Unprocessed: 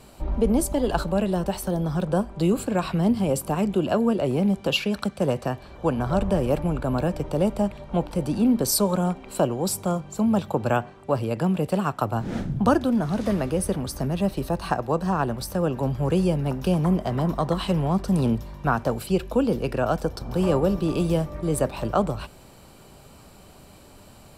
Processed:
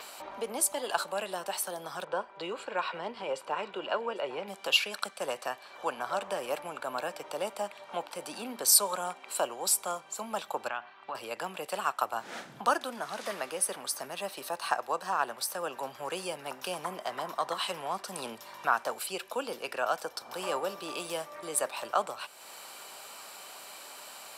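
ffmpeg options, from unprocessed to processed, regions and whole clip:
ffmpeg -i in.wav -filter_complex "[0:a]asettb=1/sr,asplit=3[link_01][link_02][link_03];[link_01]atrim=end=2.044[link_04];[link_02]atrim=start=2.04:end=4.48,asetpts=PTS-STARTPTS,afade=type=in:duration=0.004:curve=qsin,afade=type=out:start_time=2.436:duration=0.004:curve=qsin,lowpass=3200,aecho=1:1:2.1:0.33,atrim=end_sample=107604,aecho=1:1:797:0.141,atrim=end_sample=107604[link_05];[link_03]atrim=start=4.476[link_06];[link_04][link_05]acrossfade=duration=0.004:curve1=hsin:curve2=qsin[link_07];[link_07][link_06]acrossfade=duration=0.004:curve1=qsin:curve2=hsin,asettb=1/sr,asplit=3[link_08][link_09][link_10];[link_08]atrim=end=10.684[link_11];[link_09]atrim=start=10.68:end=11.15,asetpts=PTS-STARTPTS,afade=type=in:duration=0.004:curve=qsin,afade=type=out:start_time=0.466:duration=0.004:curve=qsin,lowpass=frequency=4300:width=0.5412,lowpass=frequency=4300:width=1.3066,equalizer=frequency=490:width=1.8:gain=-9.5,acompressor=threshold=-26dB:ratio=4:attack=3.2:release=140:knee=1:detection=peak[link_12];[link_10]atrim=start=11.146[link_13];[link_11][link_12]acrossfade=duration=0.004:curve1=hsin:curve2=qsin[link_14];[link_14][link_13]acrossfade=duration=0.004:curve1=qsin:curve2=hsin,highpass=930,adynamicequalizer=threshold=0.00355:dfrequency=9400:dqfactor=1.7:tfrequency=9400:tqfactor=1.7:attack=5:release=100:ratio=0.375:range=2:mode=boostabove:tftype=bell,acompressor=mode=upward:threshold=-37dB:ratio=2.5" out.wav

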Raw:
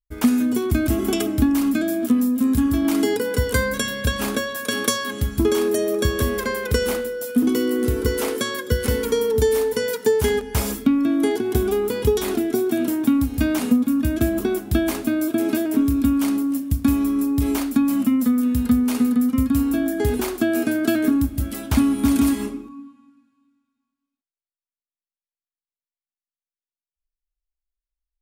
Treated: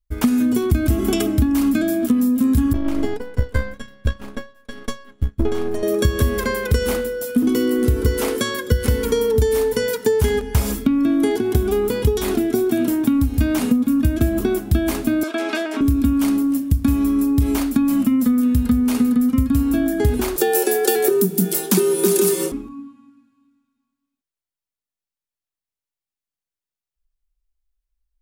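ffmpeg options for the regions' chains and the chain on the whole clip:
ffmpeg -i in.wav -filter_complex "[0:a]asettb=1/sr,asplit=3[link_01][link_02][link_03];[link_01]atrim=end=2.734[link_04];[link_02]atrim=start=2.73:end=5.83,asetpts=PTS-STARTPTS,afade=type=in:duration=0.004:curve=qsin,afade=type=out:start_time=3.096:duration=0.004:curve=qsin,aeval=exprs='if(lt(val(0),0),0.447*val(0),val(0))':channel_layout=same,lowpass=frequency=2600:poles=1,agate=range=-33dB:threshold=-19dB:ratio=3:release=100:detection=peak[link_05];[link_03]atrim=start=5.826[link_06];[link_04][link_05]acrossfade=duration=0.004:curve1=hsin:curve2=qsin[link_07];[link_07][link_06]acrossfade=duration=0.004:curve1=qsin:curve2=hsin,asettb=1/sr,asplit=3[link_08][link_09][link_10];[link_08]atrim=end=15.234[link_11];[link_09]atrim=start=15.23:end=15.81,asetpts=PTS-STARTPTS,afade=type=in:duration=0.004:curve=qsin,afade=type=out:start_time=0.576:duration=0.004:curve=qsin,highpass=760,lowpass=4700,acontrast=74[link_12];[link_10]atrim=start=15.806[link_13];[link_11][link_12]acrossfade=duration=0.004:curve1=hsin:curve2=qsin[link_14];[link_14][link_13]acrossfade=duration=0.004:curve1=qsin:curve2=hsin,asettb=1/sr,asplit=3[link_15][link_16][link_17];[link_15]atrim=end=20.364[link_18];[link_16]atrim=start=20.36:end=22.52,asetpts=PTS-STARTPTS,afade=type=in:duration=0.004:curve=qsin,afade=type=out:start_time=2.156:duration=0.004:curve=qsin,bass=frequency=250:gain=2,treble=frequency=4000:gain=13,afreqshift=120[link_19];[link_17]atrim=start=22.516[link_20];[link_18][link_19]acrossfade=duration=0.004:curve1=hsin:curve2=qsin[link_21];[link_21][link_20]acrossfade=duration=0.004:curve1=qsin:curve2=hsin,lowshelf=frequency=110:gain=11,acompressor=threshold=-15dB:ratio=4,volume=2dB" out.wav

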